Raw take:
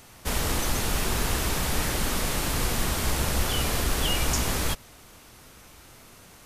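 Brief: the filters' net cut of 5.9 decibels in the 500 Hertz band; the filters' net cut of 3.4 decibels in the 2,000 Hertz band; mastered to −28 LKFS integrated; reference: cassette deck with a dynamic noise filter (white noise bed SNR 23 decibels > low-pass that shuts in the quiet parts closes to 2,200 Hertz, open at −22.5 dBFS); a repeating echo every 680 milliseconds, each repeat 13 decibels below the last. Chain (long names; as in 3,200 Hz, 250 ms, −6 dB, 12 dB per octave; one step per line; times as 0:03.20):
parametric band 500 Hz −7.5 dB
parametric band 2,000 Hz −4 dB
repeating echo 680 ms, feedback 22%, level −13 dB
white noise bed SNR 23 dB
low-pass that shuts in the quiet parts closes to 2,200 Hz, open at −22.5 dBFS
level −0.5 dB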